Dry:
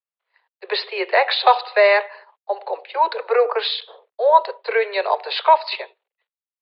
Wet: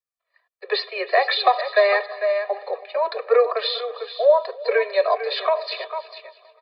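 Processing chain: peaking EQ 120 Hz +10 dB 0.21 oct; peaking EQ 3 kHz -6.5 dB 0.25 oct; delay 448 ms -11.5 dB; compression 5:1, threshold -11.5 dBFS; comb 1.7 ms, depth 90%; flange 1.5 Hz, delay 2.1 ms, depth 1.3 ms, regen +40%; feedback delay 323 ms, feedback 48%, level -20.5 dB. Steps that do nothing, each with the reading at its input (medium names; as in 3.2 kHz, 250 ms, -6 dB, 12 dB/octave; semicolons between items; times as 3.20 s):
peaking EQ 120 Hz: input has nothing below 360 Hz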